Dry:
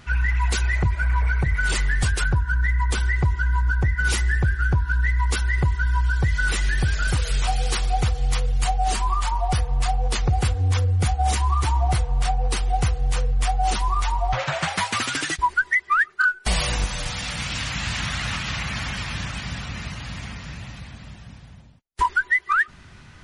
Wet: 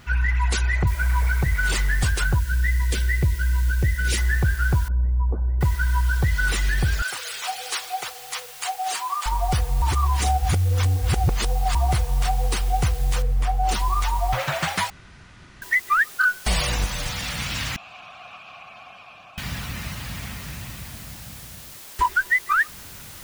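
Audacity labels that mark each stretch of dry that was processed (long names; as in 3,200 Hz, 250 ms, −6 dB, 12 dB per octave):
0.870000	0.870000	noise floor change −65 dB −42 dB
2.390000	4.180000	flat-topped bell 1,000 Hz −11.5 dB 1.1 octaves
4.880000	5.610000	inverse Chebyshev low-pass filter stop band from 2,600 Hz, stop band 60 dB
7.020000	9.260000	high-pass filter 730 Hz
9.820000	11.750000	reverse
13.220000	13.690000	high-shelf EQ 2,300 Hz −11.5 dB
14.900000	15.620000	fill with room tone
17.760000	19.380000	formant filter a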